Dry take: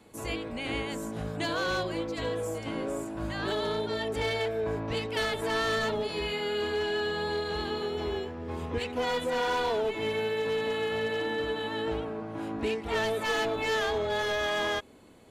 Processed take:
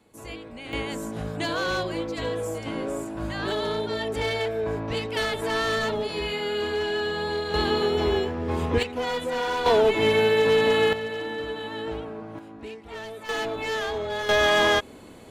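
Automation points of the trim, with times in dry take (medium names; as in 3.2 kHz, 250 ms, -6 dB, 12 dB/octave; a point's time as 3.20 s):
-4.5 dB
from 0.73 s +3 dB
from 7.54 s +9 dB
from 8.83 s +1.5 dB
from 9.66 s +10 dB
from 10.93 s -0.5 dB
from 12.39 s -8.5 dB
from 13.29 s 0 dB
from 14.29 s +9.5 dB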